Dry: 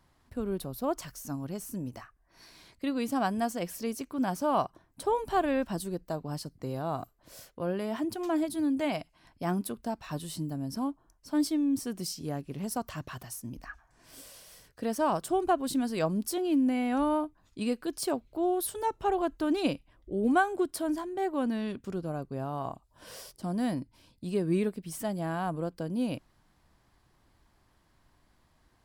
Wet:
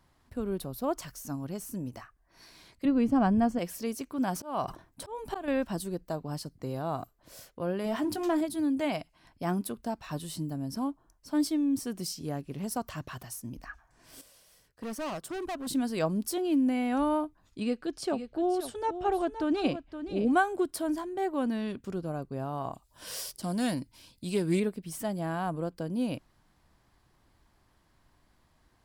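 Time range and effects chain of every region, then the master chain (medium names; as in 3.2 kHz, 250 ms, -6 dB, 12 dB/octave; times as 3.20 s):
2.85–3.59 s: RIAA curve playback + band-stop 3.8 kHz, Q 8.6 + tape noise reduction on one side only decoder only
4.31–5.48 s: slow attack 268 ms + decay stretcher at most 130 dB/s
7.84–8.41 s: hum notches 60/120/180/240/300/360/420 Hz + waveshaping leveller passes 1 + doubling 20 ms -12 dB
14.21–15.67 s: hard clipper -32.5 dBFS + upward expansion, over -50 dBFS
17.60–20.33 s: distance through air 64 m + band-stop 1 kHz, Q 10 + delay 519 ms -10.5 dB
22.73–24.60 s: treble shelf 2.2 kHz +10.5 dB + loudspeaker Doppler distortion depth 0.1 ms
whole clip: none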